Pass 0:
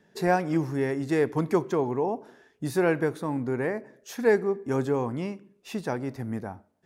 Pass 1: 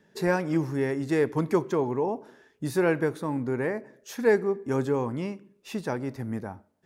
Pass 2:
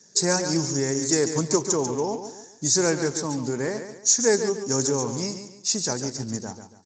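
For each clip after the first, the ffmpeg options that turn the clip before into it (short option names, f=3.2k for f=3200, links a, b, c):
-af "bandreject=f=720:w=12"
-af "aexciter=amount=12.1:drive=9.8:freq=4.8k,aecho=1:1:141|282|423|564:0.355|0.124|0.0435|0.0152" -ar 16000 -c:a libspeex -b:a 17k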